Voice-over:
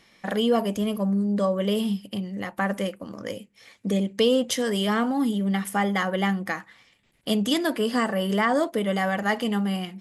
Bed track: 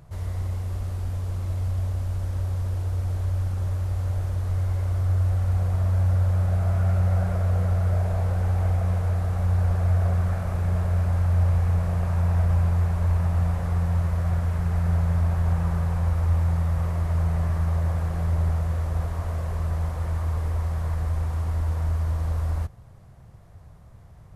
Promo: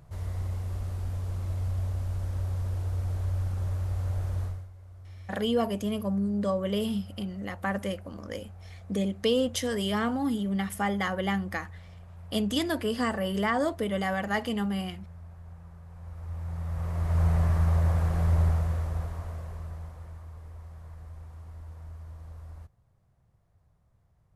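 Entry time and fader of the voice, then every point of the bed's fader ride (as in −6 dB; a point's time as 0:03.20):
5.05 s, −4.5 dB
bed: 0:04.44 −4 dB
0:04.71 −23.5 dB
0:15.83 −23.5 dB
0:17.25 0 dB
0:18.41 0 dB
0:20.29 −18.5 dB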